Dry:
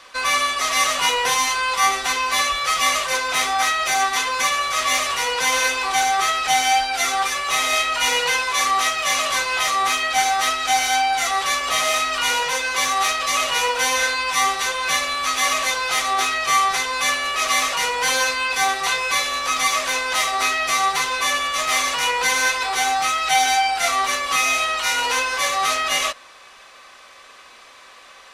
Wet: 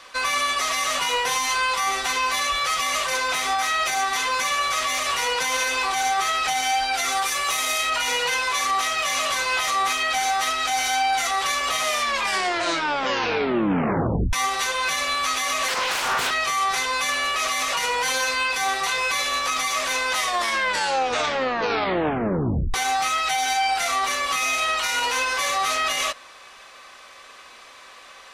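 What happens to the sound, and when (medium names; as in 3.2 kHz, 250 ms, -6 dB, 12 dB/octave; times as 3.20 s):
7.12–7.90 s: treble shelf 7.2 kHz +9.5 dB
11.84 s: tape stop 2.49 s
15.68–16.31 s: loudspeaker Doppler distortion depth 0.71 ms
20.17 s: tape stop 2.57 s
whole clip: peak limiter -14.5 dBFS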